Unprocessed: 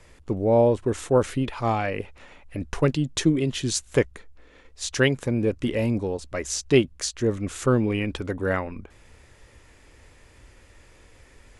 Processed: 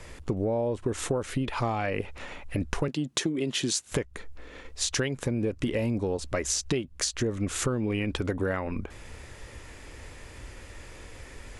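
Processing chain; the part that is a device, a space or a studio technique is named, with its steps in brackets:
0:02.88–0:03.92: high-pass filter 190 Hz 12 dB per octave
serial compression, peaks first (downward compressor 6 to 1, threshold −27 dBFS, peak gain reduction 14 dB; downward compressor 2 to 1, threshold −36 dBFS, peak gain reduction 7 dB)
level +7.5 dB

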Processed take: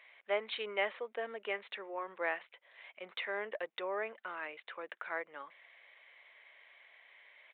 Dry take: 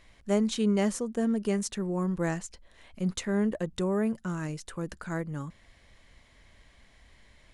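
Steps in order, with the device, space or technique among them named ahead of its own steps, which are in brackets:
0:01.74–0:02.44: mains-hum notches 60/120/180 Hz
musical greeting card (downsampling to 8,000 Hz; high-pass filter 520 Hz 24 dB per octave; parametric band 2,200 Hz +8.5 dB 0.57 octaves)
level −2 dB

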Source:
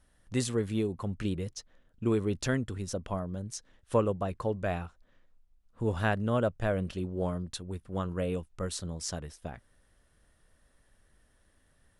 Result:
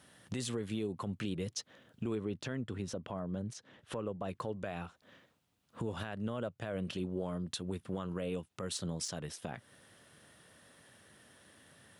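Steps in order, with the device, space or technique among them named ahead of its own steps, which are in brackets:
broadcast voice chain (high-pass filter 110 Hz 24 dB per octave; de-essing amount 60%; downward compressor 3 to 1, threshold −46 dBFS, peak gain reduction 19 dB; parametric band 3,200 Hz +4.5 dB 0.84 octaves; brickwall limiter −36.5 dBFS, peak gain reduction 10.5 dB)
0:02.15–0:04.24: high-shelf EQ 4,200 Hz −12 dB
level +9.5 dB

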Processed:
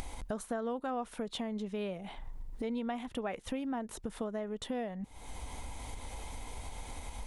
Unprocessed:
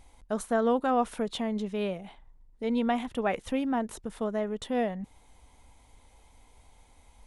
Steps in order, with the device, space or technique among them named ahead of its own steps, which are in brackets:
upward and downward compression (upward compression, threshold −36 dBFS; downward compressor 4 to 1, threshold −42 dBFS, peak gain reduction 17 dB)
level +5.5 dB

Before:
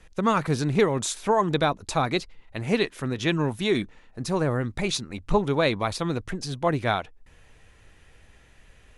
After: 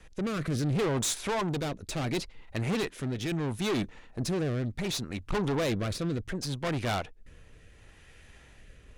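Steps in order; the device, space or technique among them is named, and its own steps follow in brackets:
overdriven rotary cabinet (tube saturation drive 30 dB, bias 0.5; rotating-speaker cabinet horn 0.7 Hz)
level +5 dB

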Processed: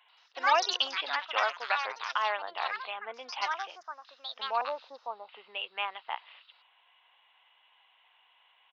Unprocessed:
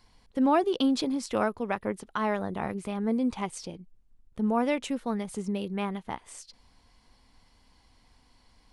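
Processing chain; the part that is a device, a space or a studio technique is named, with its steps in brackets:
0:04.61–0:05.29: Butterworth low-pass 1,100 Hz
musical greeting card (downsampling to 8,000 Hz; high-pass filter 730 Hz 24 dB per octave; parametric band 2,800 Hz +11.5 dB 0.29 octaves)
delay with pitch and tempo change per echo 86 ms, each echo +5 semitones, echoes 2
level +1.5 dB

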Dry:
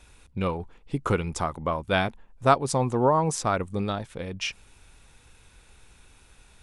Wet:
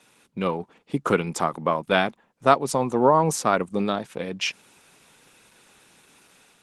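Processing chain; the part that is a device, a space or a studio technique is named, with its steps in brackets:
video call (high-pass filter 160 Hz 24 dB per octave; automatic gain control gain up to 3.5 dB; level +1.5 dB; Opus 16 kbit/s 48,000 Hz)

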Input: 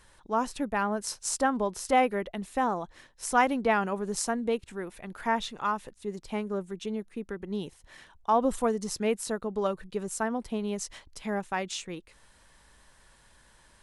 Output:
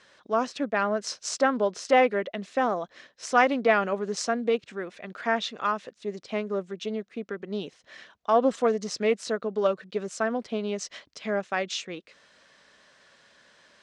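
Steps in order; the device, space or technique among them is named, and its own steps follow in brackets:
full-range speaker at full volume (highs frequency-modulated by the lows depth 0.12 ms; loudspeaker in its box 250–6,100 Hz, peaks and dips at 340 Hz −4 dB, 610 Hz +3 dB, 890 Hz −10 dB)
level +5 dB

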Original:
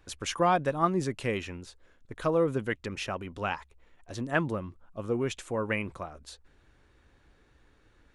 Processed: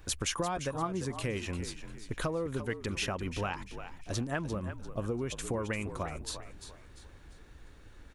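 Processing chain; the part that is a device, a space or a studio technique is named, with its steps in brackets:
ASMR close-microphone chain (low-shelf EQ 150 Hz +6 dB; downward compressor 10 to 1, threshold −35 dBFS, peak gain reduction 16.5 dB; high-shelf EQ 6,800 Hz +8 dB)
echo with shifted repeats 346 ms, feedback 36%, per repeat −53 Hz, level −10.5 dB
level +4.5 dB

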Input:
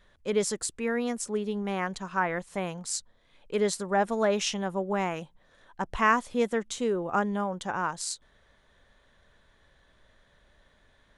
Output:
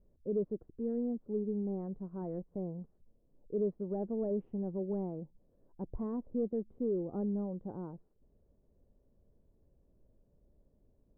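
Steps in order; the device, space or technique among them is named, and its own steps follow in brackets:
overdriven synthesiser ladder filter (soft clipping −21.5 dBFS, distortion −13 dB; transistor ladder low-pass 530 Hz, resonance 20%)
level +2 dB

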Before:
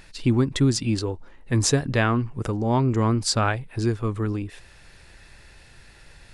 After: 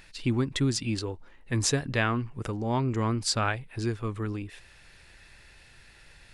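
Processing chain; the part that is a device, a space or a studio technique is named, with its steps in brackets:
presence and air boost (parametric band 2,500 Hz +5 dB 1.8 octaves; high-shelf EQ 10,000 Hz +4.5 dB)
level −6.5 dB

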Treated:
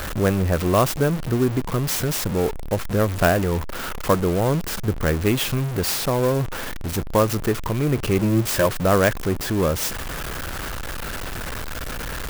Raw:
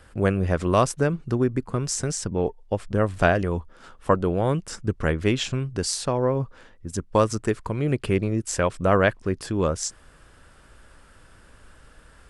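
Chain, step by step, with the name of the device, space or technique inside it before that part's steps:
0:08.19–0:08.66: EQ curve with evenly spaced ripples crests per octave 1.3, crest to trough 13 dB
early CD player with a faulty converter (converter with a step at zero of −23.5 dBFS; converter with an unsteady clock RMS 0.035 ms)

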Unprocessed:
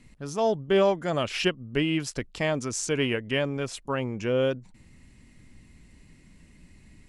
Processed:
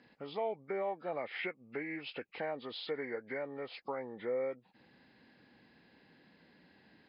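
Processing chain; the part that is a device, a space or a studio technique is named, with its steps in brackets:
0:01.43–0:02.30: parametric band 3,900 Hz +15 dB 0.41 octaves
hearing aid with frequency lowering (hearing-aid frequency compression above 1,100 Hz 1.5 to 1; downward compressor 3 to 1, threshold −38 dBFS, peak gain reduction 15 dB; loudspeaker in its box 260–6,700 Hz, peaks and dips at 490 Hz +7 dB, 800 Hz +10 dB, 2,300 Hz +4 dB, 3,900 Hz −3 dB)
level −3.5 dB

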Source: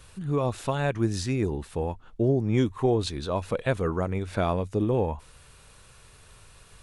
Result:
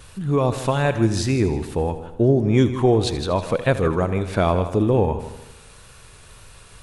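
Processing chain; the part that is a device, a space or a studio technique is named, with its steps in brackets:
multi-head tape echo (echo machine with several playback heads 79 ms, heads first and second, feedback 43%, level −15 dB; tape wow and flutter 23 cents)
level +6.5 dB

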